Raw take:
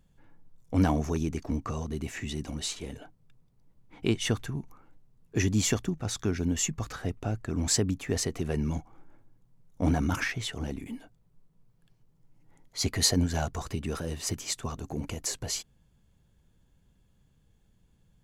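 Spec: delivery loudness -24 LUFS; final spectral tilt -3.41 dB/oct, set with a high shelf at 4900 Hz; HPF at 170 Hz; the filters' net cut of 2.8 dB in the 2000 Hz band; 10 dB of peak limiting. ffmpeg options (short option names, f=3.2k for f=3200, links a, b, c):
-af "highpass=170,equalizer=f=2k:t=o:g=-4.5,highshelf=f=4.9k:g=6,volume=8.5dB,alimiter=limit=-10dB:level=0:latency=1"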